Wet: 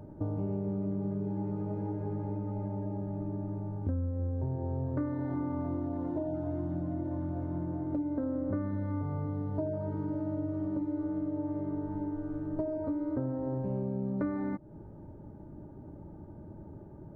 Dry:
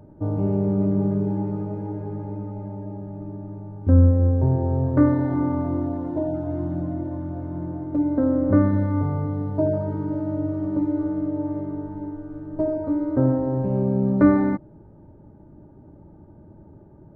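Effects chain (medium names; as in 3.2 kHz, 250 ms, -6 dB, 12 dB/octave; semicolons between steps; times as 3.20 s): compression 6:1, threshold -31 dBFS, peak gain reduction 19.5 dB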